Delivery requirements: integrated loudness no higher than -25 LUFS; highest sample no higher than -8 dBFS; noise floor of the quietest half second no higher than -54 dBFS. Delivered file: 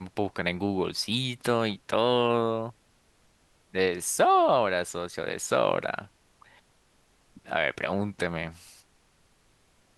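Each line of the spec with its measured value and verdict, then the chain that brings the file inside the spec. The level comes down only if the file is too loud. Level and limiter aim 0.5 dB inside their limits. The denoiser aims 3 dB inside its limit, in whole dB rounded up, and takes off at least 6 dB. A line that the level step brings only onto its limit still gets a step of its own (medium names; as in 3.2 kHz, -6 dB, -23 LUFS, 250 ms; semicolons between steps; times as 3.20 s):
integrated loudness -27.0 LUFS: pass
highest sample -9.5 dBFS: pass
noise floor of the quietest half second -64 dBFS: pass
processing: none needed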